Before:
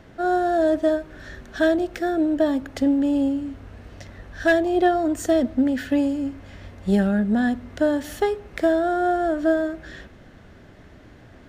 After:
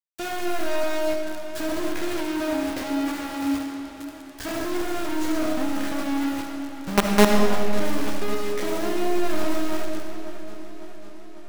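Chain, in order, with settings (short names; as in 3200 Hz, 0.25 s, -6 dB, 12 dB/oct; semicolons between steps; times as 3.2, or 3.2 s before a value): half-waves squared off; treble ducked by the level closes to 860 Hz, closed at -13.5 dBFS; high shelf 3300 Hz +8 dB; in parallel at -7 dB: bit-crush 4-bit; on the sum: resonator bank C#2 fifth, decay 0.44 s; companded quantiser 2-bit; on a send at -2 dB: reverb RT60 2.3 s, pre-delay 25 ms; on the sum: warbling echo 0.549 s, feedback 66%, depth 52 cents, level -15 dB; gain -4 dB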